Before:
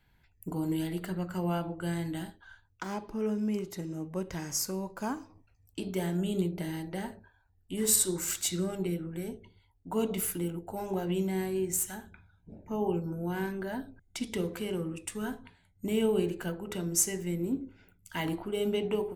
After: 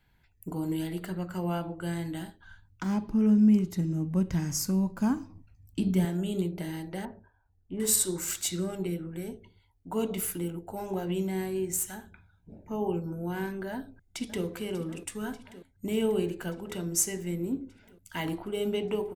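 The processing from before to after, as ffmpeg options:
-filter_complex "[0:a]asettb=1/sr,asplit=3[a][b][c];[a]atrim=end=2.404[d];[b]atrim=start=2.4:end=6.05,asetpts=PTS-STARTPTS,afade=t=in:d=0.004:c=qsin,afade=t=out:st=3.646:d=0.004:c=qsin,lowshelf=f=310:t=q:w=1.5:g=9[e];[c]atrim=start=6.046[f];[d][e]acrossfade=d=0.004:c1=hsin:c2=qsin[g];[g][f]acrossfade=d=0.004:c1=qsin:c2=hsin,asettb=1/sr,asplit=3[h][i][j];[h]atrim=end=7.054[k];[i]atrim=start=7.05:end=7.8,asetpts=PTS-STARTPTS,afade=t=in:d=0.004:c=qsin,afade=t=out:st=0.746:d=0.004:c=qsin,lowpass=1.3k[l];[j]atrim=start=7.796[m];[k][l]acrossfade=d=0.004:c1=hsin:c2=qsin[n];[n][m]acrossfade=d=0.004:c1=qsin:c2=hsin,asplit=2[o][p];[p]afade=t=in:st=13.7:d=0.01,afade=t=out:st=14.44:d=0.01,aecho=0:1:590|1180|1770|2360|2950|3540|4130|4720|5310|5900|6490:0.188365|0.141274|0.105955|0.0794664|0.0595998|0.0446999|0.0335249|0.0251437|0.0188578|0.0141433|0.0106075[q];[o][q]amix=inputs=2:normalize=0"

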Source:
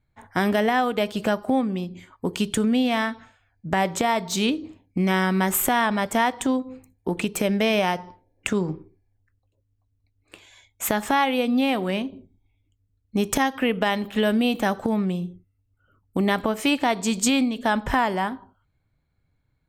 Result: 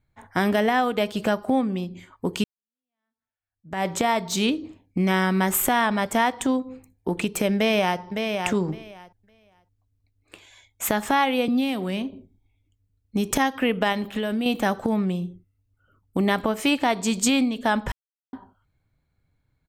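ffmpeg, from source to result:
-filter_complex "[0:a]asplit=2[a][b];[b]afade=t=in:st=7.55:d=0.01,afade=t=out:st=8:d=0.01,aecho=0:1:560|1120|1680:0.530884|0.0796327|0.0119449[c];[a][c]amix=inputs=2:normalize=0,asettb=1/sr,asplit=3[d][e][f];[d]atrim=end=11.484[g];[e]atrim=start=11.48:end=13.31,asetpts=PTS-STARTPTS,afade=t=in:d=0.004:c=qsin,afade=t=out:st=1.826:d=0.004:c=qsin,acrossover=split=330|3000[h][i][j];[i]acompressor=threshold=-31dB:ratio=6:attack=3.2:release=140:knee=2.83:detection=peak[k];[h][k][j]amix=inputs=3:normalize=0[l];[f]atrim=start=13.306[m];[g][l]acrossfade=d=0.004:c1=hsin:c2=qsin[n];[n][m]acrossfade=d=0.004:c1=qsin:c2=hsin,asettb=1/sr,asplit=3[o][p][q];[o]atrim=end=13.924[r];[p]atrim=start=13.92:end=14.46,asetpts=PTS-STARTPTS,afade=t=in:d=0.004:c=qsin,afade=t=out:st=0.536:d=0.004:c=qsin,acompressor=threshold=-22dB:ratio=6:attack=3.2:release=140:knee=1:detection=peak[s];[q]atrim=start=14.456[t];[r][s]acrossfade=d=0.004:c1=hsin:c2=qsin[u];[u][t]acrossfade=d=0.004:c1=qsin:c2=hsin,asplit=4[v][w][x][y];[v]atrim=end=2.44,asetpts=PTS-STARTPTS,afade=t=out:st=2.436:d=0.004:c=hsin[z];[w]atrim=start=2.44:end=17.92,asetpts=PTS-STARTPTS,afade=t=in:d=1.43:c=exp,afade=t=out:st=15.476:d=0.004:c=hsin[aa];[x]atrim=start=17.92:end=18.33,asetpts=PTS-STARTPTS,volume=0[ab];[y]atrim=start=18.33,asetpts=PTS-STARTPTS,afade=t=in:d=0.004:c=hsin[ac];[z][aa][ab][ac]concat=n=4:v=0:a=1"

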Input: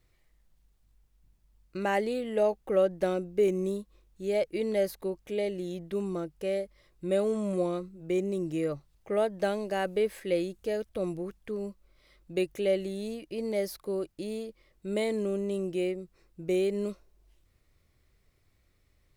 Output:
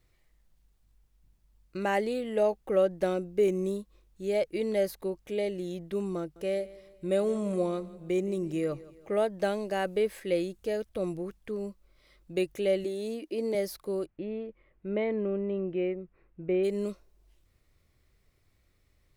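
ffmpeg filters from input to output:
-filter_complex "[0:a]asettb=1/sr,asplit=3[a][b][c];[a]atrim=end=6.194[d];[b]atrim=start=6.19:end=9.11,asetpts=PTS-STARTPTS,afade=t=in:d=0.004:c=qsin,afade=t=out:st=2.916:d=0.004:c=qsin,aecho=1:1:168|336|504|672:0.112|0.0505|0.0227|0.0102,atrim=end_sample=128772[e];[c]atrim=start=9.106[f];[d][e]acrossfade=d=0.004:c1=hsin:c2=qsin[g];[g][f]acrossfade=d=0.004:c1=qsin:c2=hsin,asettb=1/sr,asplit=3[h][i][j];[h]atrim=end=12.844[k];[i]atrim=start=12.84:end=13.55,asetpts=PTS-STARTPTS,afade=t=in:d=0.004:c=qsin,afade=t=out:st=0.706:d=0.004:c=qsin,lowshelf=f=190:t=q:w=3:g=-13.5[l];[j]atrim=start=13.546[m];[k][l]acrossfade=d=0.004:c1=hsin:c2=qsin[n];[n][m]acrossfade=d=0.004:c1=qsin:c2=hsin,asplit=3[o][p][q];[o]afade=t=out:st=14.05:d=0.02[r];[p]lowpass=f=2.5k:w=0.5412,lowpass=f=2.5k:w=1.3066,afade=t=in:st=14.05:d=0.02,afade=t=out:st=16.63:d=0.02[s];[q]afade=t=in:st=16.63:d=0.02[t];[r][s][t]amix=inputs=3:normalize=0"

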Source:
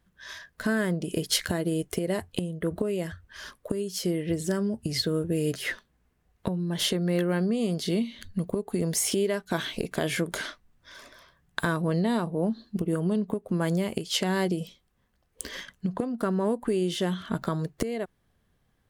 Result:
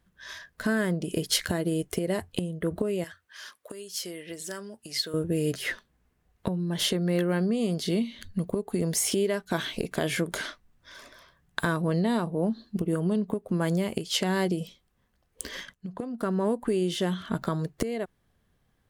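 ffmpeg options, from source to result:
-filter_complex "[0:a]asettb=1/sr,asplit=3[a][b][c];[a]atrim=end=3.044[d];[b]atrim=start=3.04:end=5.14,asetpts=PTS-STARTPTS,afade=t=in:d=0.004:c=qsin,afade=t=out:st=2.096:d=0.004:c=qsin,highpass=f=1.3k:p=1[e];[c]atrim=start=5.136[f];[d][e]acrossfade=d=0.004:c1=hsin:c2=qsin[g];[g][f]acrossfade=d=0.004:c1=qsin:c2=hsin,asplit=2[h][i];[h]atrim=end=15.74,asetpts=PTS-STARTPTS,afade=t=out:st=15.736:d=0.004:c=hsin:silence=0.223872[j];[i]atrim=start=15.74,asetpts=PTS-STARTPTS,afade=t=in:d=0.66:silence=0.223872[k];[j][k]concat=n=2:v=0:a=1"

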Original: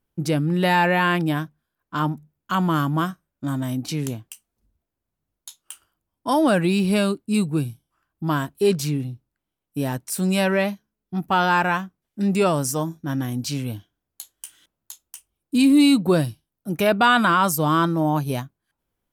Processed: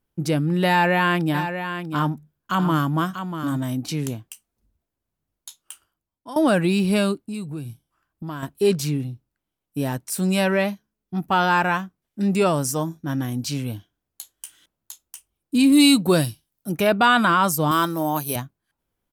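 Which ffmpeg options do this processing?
-filter_complex "[0:a]asplit=3[a][b][c];[a]afade=t=out:st=1.33:d=0.02[d];[b]aecho=1:1:641:0.355,afade=t=in:st=1.33:d=0.02,afade=t=out:st=3.56:d=0.02[e];[c]afade=t=in:st=3.56:d=0.02[f];[d][e][f]amix=inputs=3:normalize=0,asettb=1/sr,asplit=3[g][h][i];[g]atrim=end=7.214[j];[h]atrim=start=7.21:end=8.43,asetpts=PTS-STARTPTS,afade=t=in:d=0.004:c=qsin,afade=t=out:st=1.216:d=0.004:c=qsin,acompressor=threshold=-29dB:ratio=4:attack=3.2:release=140:knee=1:detection=peak[k];[i]atrim=start=8.426[l];[j][k]acrossfade=d=0.004:c1=hsin:c2=qsin[m];[m][l]acrossfade=d=0.004:c1=qsin:c2=hsin,asettb=1/sr,asplit=3[n][o][p];[n]atrim=end=15.724[q];[o]atrim=start=15.72:end=16.72,asetpts=PTS-STARTPTS,afade=t=in:d=0.004:c=qsin,afade=t=out:st=0.996:d=0.004:c=qsin,highshelf=f=2.5k:g=9[r];[p]atrim=start=16.716[s];[q][r]acrossfade=d=0.004:c1=hsin:c2=qsin[t];[t][s]acrossfade=d=0.004:c1=qsin:c2=hsin,asettb=1/sr,asplit=3[u][v][w];[u]atrim=end=17.714[x];[v]atrim=start=17.71:end=18.36,asetpts=PTS-STARTPTS,afade=t=in:d=0.004:c=qsin,afade=t=out:st=0.646:d=0.004:c=qsin,aemphasis=mode=production:type=bsi[y];[w]atrim=start=18.356[z];[x][y]acrossfade=d=0.004:c1=hsin:c2=qsin[aa];[aa][z]acrossfade=d=0.004:c1=qsin:c2=hsin,asplit=2[ab][ac];[ab]atrim=end=6.36,asetpts=PTS-STARTPTS,afade=t=out:st=5.61:d=0.75:silence=0.141254[ad];[ac]atrim=start=6.36,asetpts=PTS-STARTPTS,afade=t=in:d=0.004:c=hsin:silence=0.141254[ae];[ad][ae]concat=n=2:v=0:a=1"

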